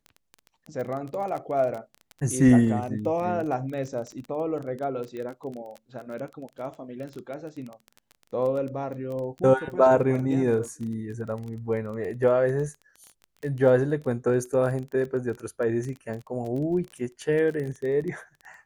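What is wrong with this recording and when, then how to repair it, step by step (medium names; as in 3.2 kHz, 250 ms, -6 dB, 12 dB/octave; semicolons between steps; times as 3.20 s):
crackle 21 per s -32 dBFS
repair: de-click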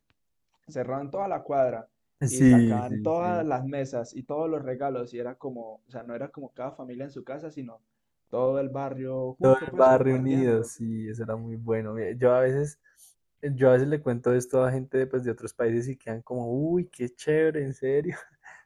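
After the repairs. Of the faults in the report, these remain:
nothing left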